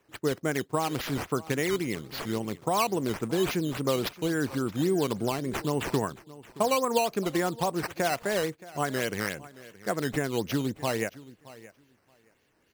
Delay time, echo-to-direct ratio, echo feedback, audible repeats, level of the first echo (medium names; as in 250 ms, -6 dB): 623 ms, -19.0 dB, 16%, 2, -19.0 dB